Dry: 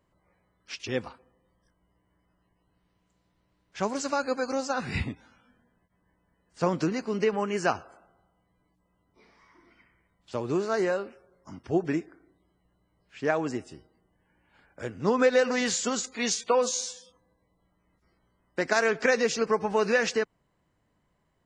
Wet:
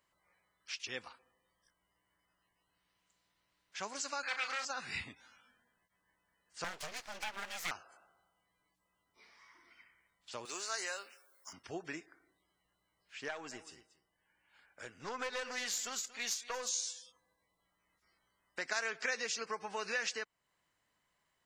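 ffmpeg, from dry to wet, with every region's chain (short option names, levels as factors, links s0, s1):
-filter_complex "[0:a]asettb=1/sr,asplit=3[s0][s1][s2];[s0]atrim=end=4.234[s3];[s1]atrim=start=4.23:end=4.65,asetpts=PTS-STARTPTS,afade=t=in:d=0.004:c=qsin,afade=t=out:st=0.416:d=0.004:c=qsin,aeval=exprs='0.15*sin(PI/2*3.16*val(0)/0.15)':c=same,bandpass=f=1900:t=q:w=1.2,asplit=2[s4][s5];[s5]adelay=35,volume=0.355[s6];[s4][s6]amix=inputs=2:normalize=0,atrim=end_sample=18522[s7];[s2]atrim=start=4.646[s8];[s3][s7]acrossfade=d=0.004:c1=hsin:c2=qsin[s9];[s9][s8]acrossfade=d=0.004:c1=qsin:c2=hsin,asettb=1/sr,asplit=3[s10][s11][s12];[s10]atrim=end=6.644[s13];[s11]atrim=start=6.64:end=7.71,asetpts=PTS-STARTPTS,afade=t=in:d=0.004:c=qsin,afade=t=out:st=1.066:d=0.004:c=qsin,lowshelf=f=180:g=-9,afreqshift=-14,aeval=exprs='abs(val(0))':c=same[s14];[s12]atrim=start=7.706[s15];[s13][s14]acrossfade=d=0.004:c1=hsin:c2=qsin[s16];[s16][s15]acrossfade=d=0.004:c1=qsin:c2=hsin,asettb=1/sr,asplit=3[s17][s18][s19];[s17]atrim=end=10.454[s20];[s18]atrim=start=10.45:end=11.53,asetpts=PTS-STARTPTS,afade=t=in:d=0.004:c=qsin,afade=t=out:st=1.076:d=0.004:c=qsin,highpass=f=300:p=1,aemphasis=mode=production:type=riaa[s21];[s19]atrim=start=11.526[s22];[s20][s21]acrossfade=d=0.004:c1=hsin:c2=qsin[s23];[s23][s22]acrossfade=d=0.004:c1=qsin:c2=hsin,asettb=1/sr,asplit=3[s24][s25][s26];[s24]atrim=end=13.284[s27];[s25]atrim=start=13.28:end=16.69,asetpts=PTS-STARTPTS,afade=t=in:d=0.004:c=qsin,afade=t=out:st=3.406:d=0.004:c=qsin,aeval=exprs='(tanh(7.94*val(0)+0.6)-tanh(0.6))/7.94':c=same,aecho=1:1:232:0.126,atrim=end_sample=150381[s28];[s26]atrim=start=16.686[s29];[s27][s28]acrossfade=d=0.004:c1=hsin:c2=qsin[s30];[s30][s29]acrossfade=d=0.004:c1=qsin:c2=hsin,tiltshelf=f=760:g=-10,acompressor=threshold=0.00891:ratio=1.5,volume=0.447"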